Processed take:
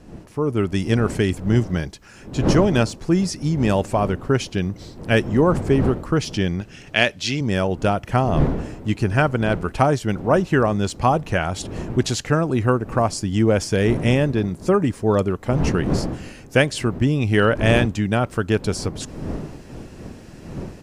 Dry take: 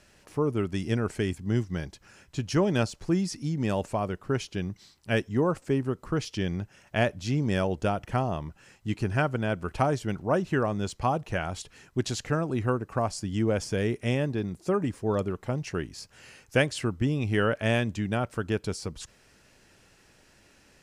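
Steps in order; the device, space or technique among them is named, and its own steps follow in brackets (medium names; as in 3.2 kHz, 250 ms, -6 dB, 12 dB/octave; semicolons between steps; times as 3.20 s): 6.61–7.41 s: frequency weighting D; smartphone video outdoors (wind noise 290 Hz -38 dBFS; level rider gain up to 9 dB; AAC 128 kbps 48 kHz)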